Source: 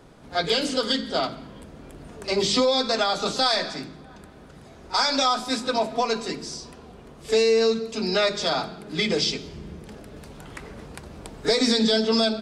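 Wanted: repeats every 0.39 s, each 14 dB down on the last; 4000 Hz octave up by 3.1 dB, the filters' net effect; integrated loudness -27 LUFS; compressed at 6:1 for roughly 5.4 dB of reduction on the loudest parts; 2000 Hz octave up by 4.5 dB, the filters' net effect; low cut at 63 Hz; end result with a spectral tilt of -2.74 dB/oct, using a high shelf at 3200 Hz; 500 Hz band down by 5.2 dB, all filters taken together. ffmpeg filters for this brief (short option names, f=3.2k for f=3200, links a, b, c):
-af "highpass=63,equalizer=f=500:t=o:g=-6.5,equalizer=f=2k:t=o:g=6,highshelf=f=3.2k:g=-3,equalizer=f=4k:t=o:g=4.5,acompressor=threshold=-22dB:ratio=6,aecho=1:1:390|780:0.2|0.0399,volume=-0.5dB"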